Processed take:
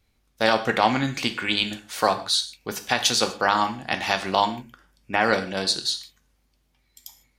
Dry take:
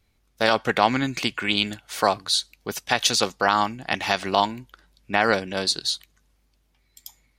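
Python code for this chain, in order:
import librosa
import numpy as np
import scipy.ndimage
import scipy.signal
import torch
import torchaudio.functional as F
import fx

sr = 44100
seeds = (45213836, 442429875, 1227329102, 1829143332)

y = fx.peak_eq(x, sr, hz=4000.0, db=-13.5, octaves=0.24, at=(4.46, 5.23))
y = fx.rev_gated(y, sr, seeds[0], gate_ms=180, shape='falling', drr_db=7.0)
y = y * librosa.db_to_amplitude(-1.0)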